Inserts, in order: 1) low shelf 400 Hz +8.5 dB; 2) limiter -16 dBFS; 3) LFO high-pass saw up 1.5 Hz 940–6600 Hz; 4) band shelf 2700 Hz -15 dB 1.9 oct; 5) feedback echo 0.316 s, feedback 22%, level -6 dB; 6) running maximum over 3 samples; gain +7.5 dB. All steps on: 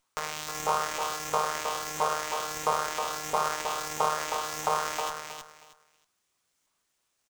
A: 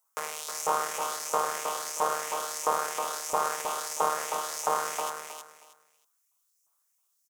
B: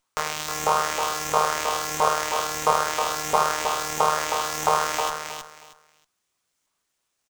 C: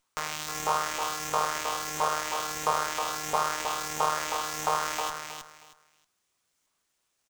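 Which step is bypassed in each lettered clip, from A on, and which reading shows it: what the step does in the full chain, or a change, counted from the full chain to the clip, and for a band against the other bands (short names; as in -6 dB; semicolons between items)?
6, distortion -8 dB; 2, mean gain reduction 6.0 dB; 1, 500 Hz band -3.0 dB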